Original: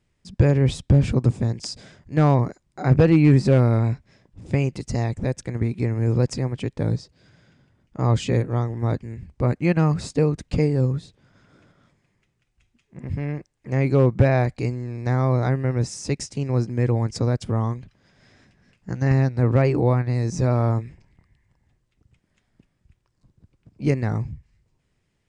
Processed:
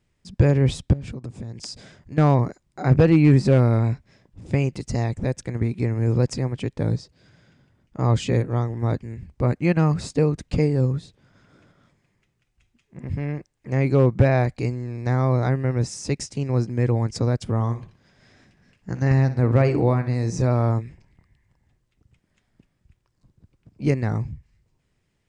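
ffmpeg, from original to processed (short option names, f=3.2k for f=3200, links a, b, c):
-filter_complex "[0:a]asettb=1/sr,asplit=3[a][b][c];[a]atrim=end=0.934[d];[b]atrim=start=0.93:end=2.18,asetpts=PTS-STARTPTS,afade=t=in:d=0.004:c=qsin,afade=t=out:st=1.246:d=0.004:c=qsin,acompressor=threshold=-30dB:ratio=8:attack=3.2:release=140:knee=1:detection=peak[e];[c]atrim=start=2.176[f];[d][e]acrossfade=d=0.004:c1=hsin:c2=qsin[g];[g][f]acrossfade=d=0.004:c1=qsin:c2=hsin,asettb=1/sr,asplit=3[h][i][j];[h]atrim=end=17.544[k];[i]atrim=start=17.54:end=20.42,asetpts=PTS-STARTPTS,afade=t=in:d=0.004:c=qsin,afade=t=out:st=2.876:d=0.004:c=qsin,aecho=1:1:61|122|183|244:0.224|0.0806|0.029|0.0104,atrim=end_sample=127008[l];[j]atrim=start=20.416[m];[k][l]acrossfade=d=0.004:c1=hsin:c2=qsin[n];[n][m]acrossfade=d=0.004:c1=qsin:c2=hsin"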